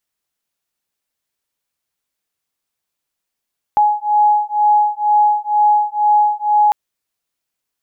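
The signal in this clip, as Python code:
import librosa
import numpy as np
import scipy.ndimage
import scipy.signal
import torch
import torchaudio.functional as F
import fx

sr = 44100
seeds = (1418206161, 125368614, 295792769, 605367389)

y = fx.two_tone_beats(sr, length_s=2.95, hz=837.0, beat_hz=2.1, level_db=-14.0)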